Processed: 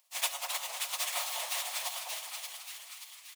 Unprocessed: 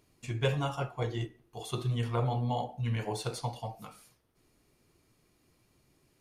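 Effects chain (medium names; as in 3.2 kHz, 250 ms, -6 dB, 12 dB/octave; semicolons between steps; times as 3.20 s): spectral contrast reduction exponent 0.19; steep high-pass 590 Hz 72 dB/octave; reverb removal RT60 1.7 s; peaking EQ 1.5 kHz -9.5 dB 0.3 oct; comb 5.5 ms, depth 35%; transient shaper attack +5 dB, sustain -3 dB; plain phase-vocoder stretch 0.54×; two-band feedback delay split 1.3 kHz, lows 202 ms, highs 580 ms, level -5 dB; reverberation RT60 1.7 s, pre-delay 17 ms, DRR 12.5 dB; modulated delay 261 ms, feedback 35%, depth 157 cents, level -7 dB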